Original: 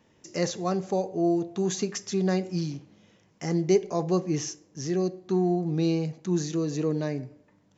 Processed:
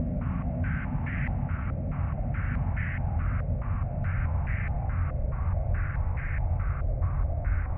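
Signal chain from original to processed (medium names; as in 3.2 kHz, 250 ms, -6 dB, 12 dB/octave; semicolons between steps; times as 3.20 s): tape stop on the ending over 1.81 s; Paulstretch 26×, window 1.00 s, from 7.06 s; step-sequenced low-pass 4.7 Hz 580–1800 Hz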